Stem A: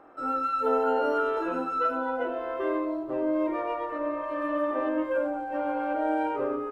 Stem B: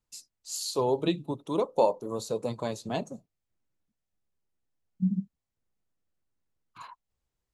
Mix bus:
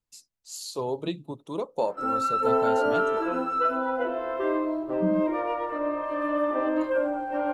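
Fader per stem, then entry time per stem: +2.0, −3.5 decibels; 1.80, 0.00 seconds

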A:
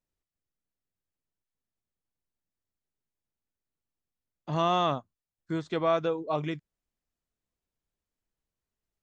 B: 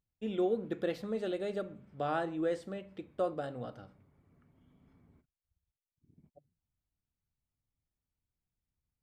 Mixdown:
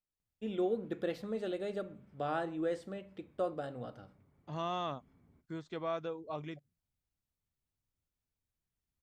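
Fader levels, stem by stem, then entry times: −11.0, −2.0 decibels; 0.00, 0.20 seconds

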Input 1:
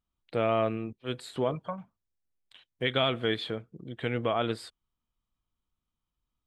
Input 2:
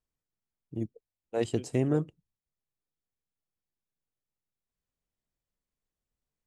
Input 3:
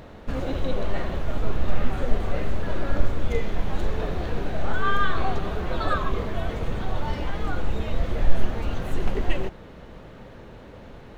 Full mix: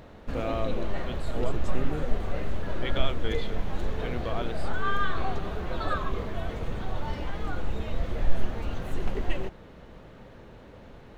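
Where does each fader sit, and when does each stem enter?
−6.0, −8.0, −4.5 decibels; 0.00, 0.00, 0.00 seconds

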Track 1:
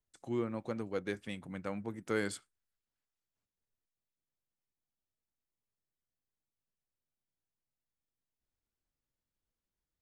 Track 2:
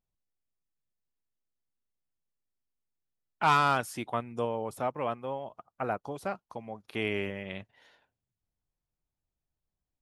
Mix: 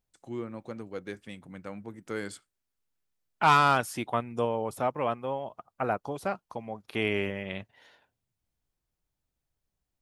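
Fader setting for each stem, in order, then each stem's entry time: −1.5, +3.0 decibels; 0.00, 0.00 seconds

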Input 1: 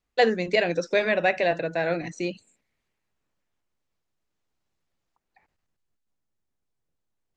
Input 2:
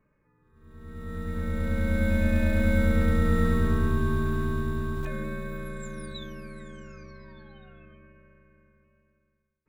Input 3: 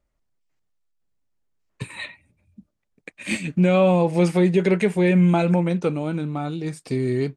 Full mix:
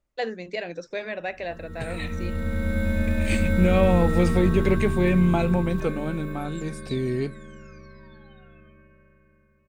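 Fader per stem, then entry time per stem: −9.0, 0.0, −3.5 decibels; 0.00, 0.75, 0.00 seconds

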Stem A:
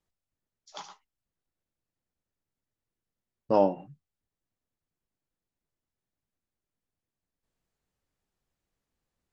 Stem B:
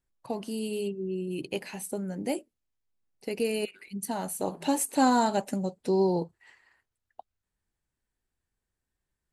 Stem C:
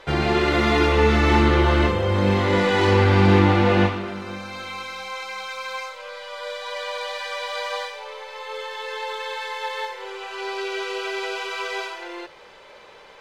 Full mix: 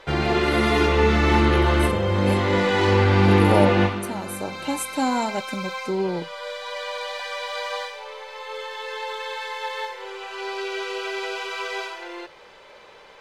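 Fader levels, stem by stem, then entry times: +2.5, −0.5, −1.0 decibels; 0.00, 0.00, 0.00 seconds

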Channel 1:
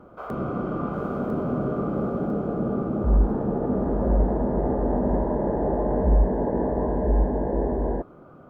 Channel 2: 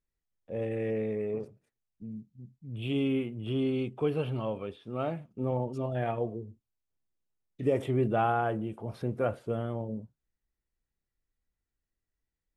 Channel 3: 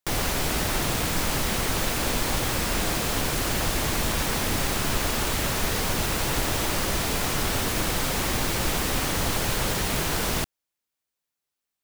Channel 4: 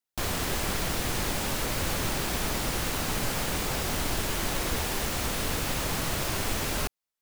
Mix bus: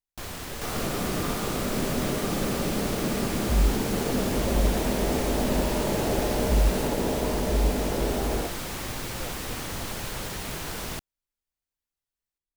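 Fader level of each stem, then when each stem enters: −3.0, −12.5, −8.0, −7.0 decibels; 0.45, 0.00, 0.55, 0.00 seconds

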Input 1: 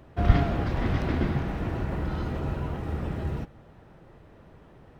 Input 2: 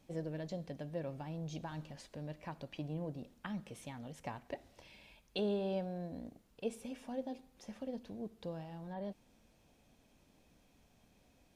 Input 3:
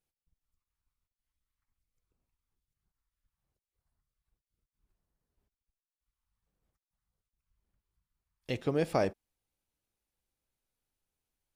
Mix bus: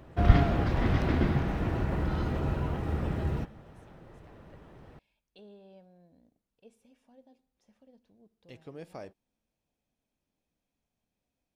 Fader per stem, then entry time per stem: 0.0, −17.5, −15.0 decibels; 0.00, 0.00, 0.00 seconds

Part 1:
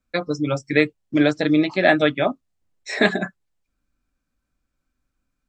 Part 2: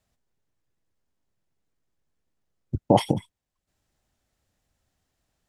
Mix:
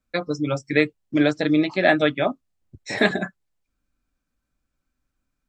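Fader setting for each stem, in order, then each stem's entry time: −1.5, −17.5 decibels; 0.00, 0.00 seconds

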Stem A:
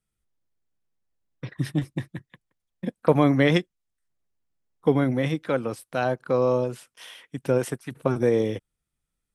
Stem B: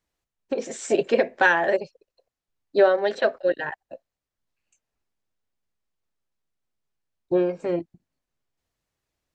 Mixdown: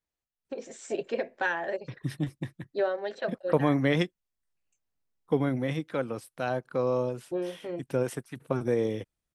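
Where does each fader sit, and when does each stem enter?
−5.5, −10.5 decibels; 0.45, 0.00 seconds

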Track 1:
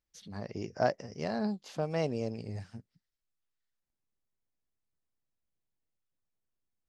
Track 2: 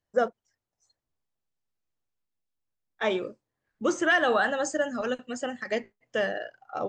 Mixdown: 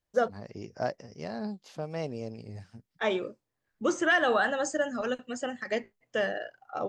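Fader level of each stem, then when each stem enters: −3.0, −1.5 decibels; 0.00, 0.00 seconds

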